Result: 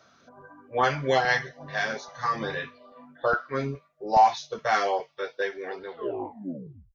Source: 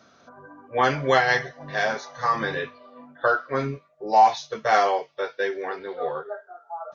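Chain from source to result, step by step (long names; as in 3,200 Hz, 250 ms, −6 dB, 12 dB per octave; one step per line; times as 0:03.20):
turntable brake at the end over 1.05 s
auto-filter notch saw up 2.4 Hz 200–2,500 Hz
level −2 dB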